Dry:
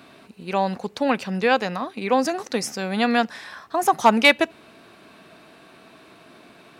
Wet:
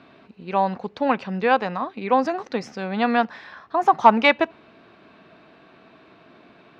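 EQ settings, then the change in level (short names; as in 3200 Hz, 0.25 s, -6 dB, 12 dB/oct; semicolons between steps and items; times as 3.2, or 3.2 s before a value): dynamic EQ 980 Hz, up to +6 dB, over -33 dBFS, Q 1.5; air absorption 210 m; -1.0 dB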